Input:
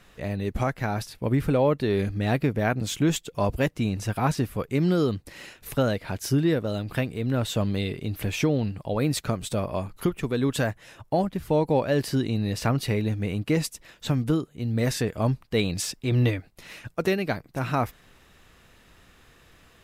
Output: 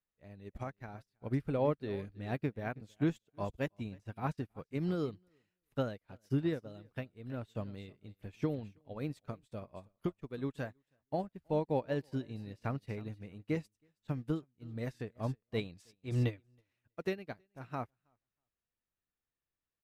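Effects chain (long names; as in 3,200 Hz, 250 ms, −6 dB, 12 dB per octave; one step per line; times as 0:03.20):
high-shelf EQ 4,500 Hz −6.5 dB
on a send: repeating echo 321 ms, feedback 22%, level −15 dB
on the sum: expander for the loud parts 2.5 to 1, over −41 dBFS
level −7.5 dB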